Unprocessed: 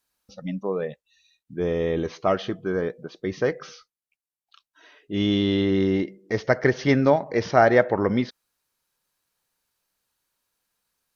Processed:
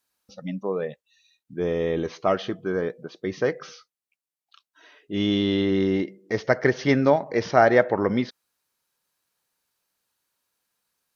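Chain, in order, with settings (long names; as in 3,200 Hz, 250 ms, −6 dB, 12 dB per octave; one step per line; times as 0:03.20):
low-shelf EQ 63 Hz −11.5 dB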